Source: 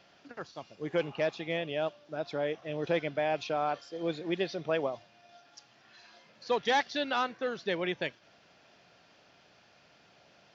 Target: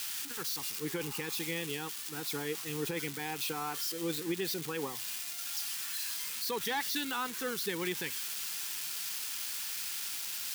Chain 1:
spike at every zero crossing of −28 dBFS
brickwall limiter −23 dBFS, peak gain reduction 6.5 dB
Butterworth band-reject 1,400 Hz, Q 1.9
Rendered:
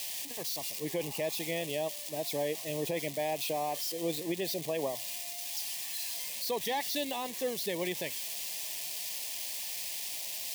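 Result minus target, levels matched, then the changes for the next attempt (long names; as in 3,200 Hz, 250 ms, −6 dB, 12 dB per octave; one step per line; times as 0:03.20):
500 Hz band +5.0 dB
change: Butterworth band-reject 620 Hz, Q 1.9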